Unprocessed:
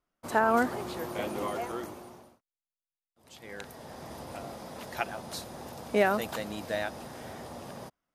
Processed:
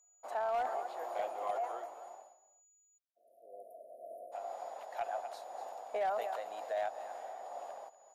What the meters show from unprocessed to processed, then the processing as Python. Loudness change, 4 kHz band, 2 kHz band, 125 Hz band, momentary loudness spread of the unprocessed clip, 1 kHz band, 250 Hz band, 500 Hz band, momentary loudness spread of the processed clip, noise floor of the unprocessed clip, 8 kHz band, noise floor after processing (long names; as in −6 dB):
−7.0 dB, −14.0 dB, −14.5 dB, below −30 dB, 19 LU, −4.0 dB, −27.0 dB, −6.0 dB, 17 LU, below −85 dBFS, −12.0 dB, −71 dBFS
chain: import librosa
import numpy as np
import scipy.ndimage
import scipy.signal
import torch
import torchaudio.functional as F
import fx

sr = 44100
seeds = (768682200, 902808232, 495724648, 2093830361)

p1 = x + 10.0 ** (-15.5 / 20.0) * np.pad(x, (int(241 * sr / 1000.0), 0))[:len(x)]
p2 = p1 + 10.0 ** (-50.0 / 20.0) * np.sin(2.0 * np.pi * 6900.0 * np.arange(len(p1)) / sr)
p3 = fx.ladder_highpass(p2, sr, hz=530.0, resonance_pct=45)
p4 = fx.high_shelf(p3, sr, hz=3400.0, db=-10.5)
p5 = fx.tremolo_shape(p4, sr, shape='triangle', hz=2.0, depth_pct=35)
p6 = fx.peak_eq(p5, sr, hz=740.0, db=8.0, octaves=0.32)
p7 = fx.over_compress(p6, sr, threshold_db=-35.0, ratio=-0.5)
p8 = p6 + F.gain(torch.from_numpy(p7), 1.5).numpy()
p9 = fx.spec_erase(p8, sr, start_s=2.98, length_s=1.34, low_hz=730.0, high_hz=9400.0)
p10 = np.clip(p9, -10.0 ** (-22.0 / 20.0), 10.0 ** (-22.0 / 20.0))
y = F.gain(torch.from_numpy(p10), -6.5).numpy()